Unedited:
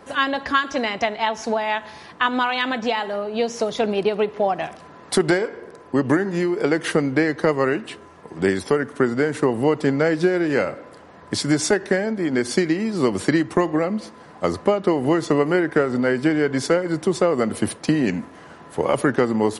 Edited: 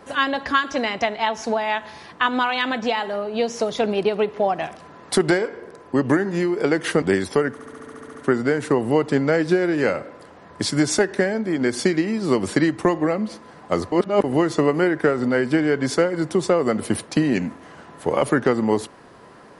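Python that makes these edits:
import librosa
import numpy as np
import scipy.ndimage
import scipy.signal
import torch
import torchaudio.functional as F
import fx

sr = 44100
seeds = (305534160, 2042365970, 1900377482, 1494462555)

y = fx.edit(x, sr, fx.cut(start_s=7.02, length_s=1.35),
    fx.stutter(start_s=8.87, slice_s=0.07, count=10),
    fx.reverse_span(start_s=14.64, length_s=0.32), tone=tone)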